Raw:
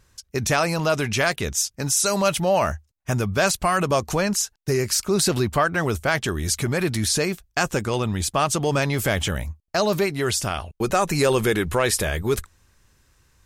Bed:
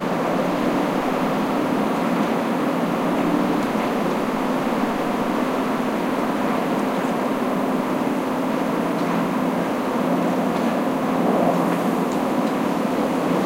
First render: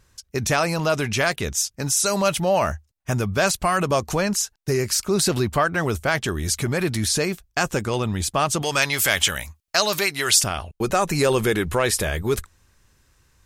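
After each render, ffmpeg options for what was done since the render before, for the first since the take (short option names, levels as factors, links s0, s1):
-filter_complex "[0:a]asettb=1/sr,asplit=3[s0][s1][s2];[s0]atrim=end=8.624[s3];[s1]atrim=start=8.62:end=10.44,asetpts=PTS-STARTPTS,afade=t=in:d=0.004:c=qsin,afade=t=out:st=1.816:d=0.004:c=qsin,tiltshelf=f=830:g=-9[s4];[s2]atrim=start=10.436[s5];[s3][s4]acrossfade=d=0.004:c1=hsin:c2=qsin[s6];[s6][s5]acrossfade=d=0.004:c1=qsin:c2=hsin"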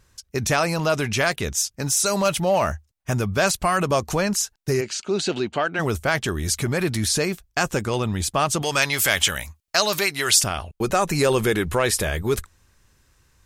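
-filter_complex "[0:a]asettb=1/sr,asplit=3[s0][s1][s2];[s0]atrim=end=1.464[s3];[s1]atrim=start=1.46:end=3.34,asetpts=PTS-STARTPTS,afade=t=in:d=0.004:c=qsin,afade=t=out:st=1.876:d=0.004:c=qsin,volume=4.47,asoftclip=hard,volume=0.224[s4];[s2]atrim=start=3.336[s5];[s3][s4]acrossfade=d=0.004:c1=hsin:c2=qsin[s6];[s6][s5]acrossfade=d=0.004:c1=qsin:c2=hsin,asplit=3[s7][s8][s9];[s7]afade=t=out:st=4.8:d=0.02[s10];[s8]highpass=240,equalizer=f=540:t=q:w=4:g=-3,equalizer=f=1100:t=q:w=4:g=-8,equalizer=f=1900:t=q:w=4:g=-4,equalizer=f=2900:t=q:w=4:g=5,equalizer=f=5300:t=q:w=4:g=-9,lowpass=f=6300:w=0.5412,lowpass=f=6300:w=1.3066,afade=t=in:st=4.8:d=0.02,afade=t=out:st=5.78:d=0.02[s11];[s9]afade=t=in:st=5.78:d=0.02[s12];[s10][s11][s12]amix=inputs=3:normalize=0"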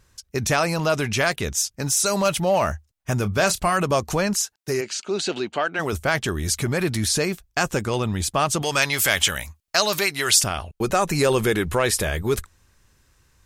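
-filter_complex "[0:a]asettb=1/sr,asplit=3[s0][s1][s2];[s0]atrim=end=3.174[s3];[s1]atrim=start=3.17:end=3.73,asetpts=PTS-STARTPTS,afade=t=in:d=0.004:c=qsin,afade=t=out:st=0.556:d=0.004:c=qsin,asplit=2[s4][s5];[s5]adelay=29,volume=0.224[s6];[s4][s6]amix=inputs=2:normalize=0,atrim=end_sample=24696[s7];[s2]atrim=start=3.726[s8];[s3][s7]acrossfade=d=0.004:c1=hsin:c2=qsin[s9];[s9][s8]acrossfade=d=0.004:c1=qsin:c2=hsin,asettb=1/sr,asplit=3[s10][s11][s12];[s10]atrim=end=4.424[s13];[s11]atrim=start=4.42:end=5.93,asetpts=PTS-STARTPTS,afade=t=in:d=0.004:c=qsin,afade=t=out:st=1.506:d=0.004:c=qsin,highpass=f=270:p=1[s14];[s12]atrim=start=5.926[s15];[s13][s14]acrossfade=d=0.004:c1=hsin:c2=qsin[s16];[s16][s15]acrossfade=d=0.004:c1=qsin:c2=hsin"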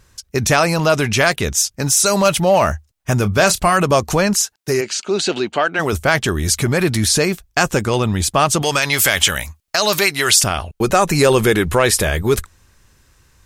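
-af "alimiter=level_in=2.11:limit=0.891:release=50:level=0:latency=1"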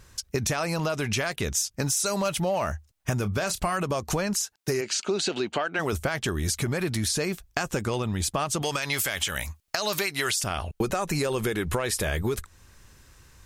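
-af "alimiter=limit=0.398:level=0:latency=1:release=433,acompressor=threshold=0.0631:ratio=6"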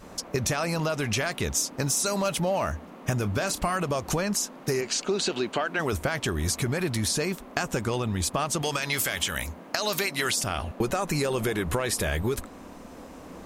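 -filter_complex "[1:a]volume=0.0668[s0];[0:a][s0]amix=inputs=2:normalize=0"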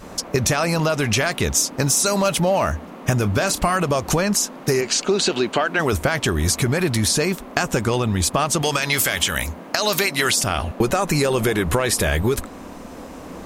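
-af "volume=2.37,alimiter=limit=0.708:level=0:latency=1"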